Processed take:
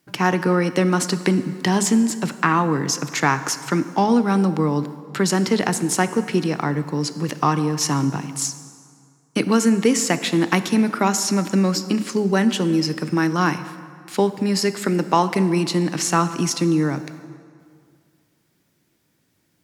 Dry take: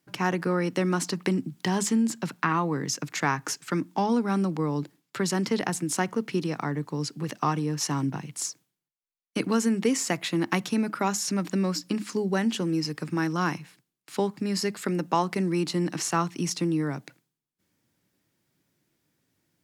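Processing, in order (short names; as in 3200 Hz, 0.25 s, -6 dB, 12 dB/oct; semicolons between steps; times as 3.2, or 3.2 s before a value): plate-style reverb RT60 2.2 s, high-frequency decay 0.7×, DRR 11.5 dB; gain +7 dB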